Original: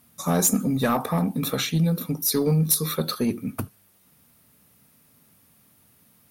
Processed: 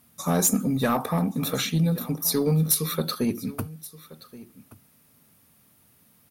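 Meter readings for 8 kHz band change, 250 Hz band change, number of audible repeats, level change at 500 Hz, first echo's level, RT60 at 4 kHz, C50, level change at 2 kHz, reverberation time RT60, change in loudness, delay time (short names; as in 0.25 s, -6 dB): -1.0 dB, -1.0 dB, 1, -1.0 dB, -19.0 dB, none, none, -1.0 dB, none, -1.0 dB, 1.126 s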